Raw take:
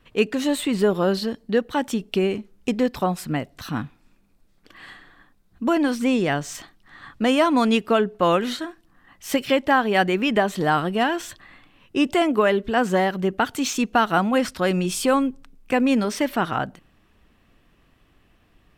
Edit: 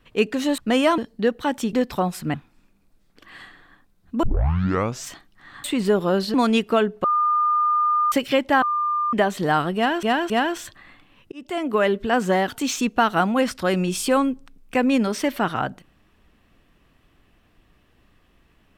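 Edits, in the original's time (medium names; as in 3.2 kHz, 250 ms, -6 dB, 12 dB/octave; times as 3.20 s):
0.58–1.28 s: swap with 7.12–7.52 s
2.03–2.77 s: delete
3.38–3.82 s: delete
5.71 s: tape start 0.82 s
8.22–9.30 s: bleep 1.21 kHz -16.5 dBFS
9.80–10.31 s: bleep 1.2 kHz -19.5 dBFS
10.94–11.21 s: loop, 3 plays
11.96–12.51 s: fade in
13.12–13.45 s: delete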